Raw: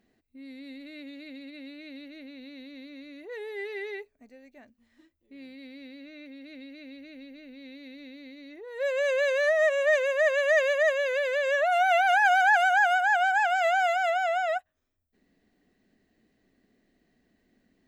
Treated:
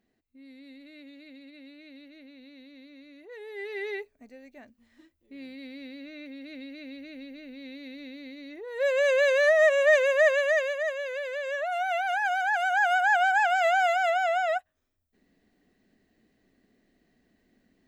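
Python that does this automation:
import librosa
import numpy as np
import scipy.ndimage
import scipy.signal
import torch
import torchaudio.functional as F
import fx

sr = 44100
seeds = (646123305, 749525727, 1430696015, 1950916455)

y = fx.gain(x, sr, db=fx.line((3.39, -5.5), (3.89, 3.0), (10.24, 3.0), (10.78, -6.0), (12.5, -6.0), (13.02, 1.0)))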